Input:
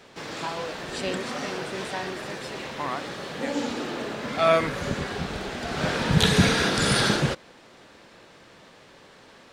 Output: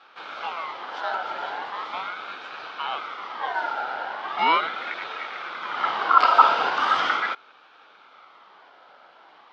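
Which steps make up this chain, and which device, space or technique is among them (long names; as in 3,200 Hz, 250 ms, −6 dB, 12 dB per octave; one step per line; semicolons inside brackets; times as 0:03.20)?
voice changer toy (ring modulator whose carrier an LFO sweeps 1,600 Hz, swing 30%, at 0.39 Hz; loudspeaker in its box 410–3,600 Hz, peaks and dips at 810 Hz +5 dB, 1,300 Hz +9 dB, 1,800 Hz −9 dB, 2,600 Hz −7 dB)
level +2.5 dB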